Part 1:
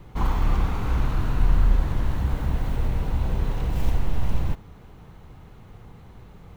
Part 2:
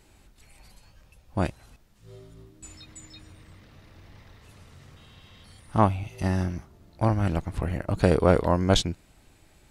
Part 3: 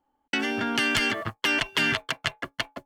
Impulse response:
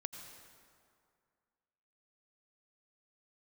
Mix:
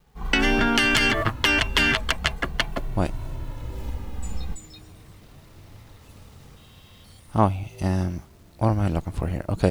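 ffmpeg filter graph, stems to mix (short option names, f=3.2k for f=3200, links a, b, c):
-filter_complex "[0:a]asplit=2[a][b];[b]adelay=2.1,afreqshift=-0.44[c];[a][c]amix=inputs=2:normalize=1,volume=-12.5dB[d];[1:a]equalizer=f=1.8k:t=o:w=0.85:g=-4.5,adelay=1600,volume=-6dB[e];[2:a]acompressor=threshold=-28dB:ratio=2.5,volume=2dB[f];[d][e][f]amix=inputs=3:normalize=0,acrusher=bits=10:mix=0:aa=0.000001,dynaudnorm=f=140:g=3:m=8dB"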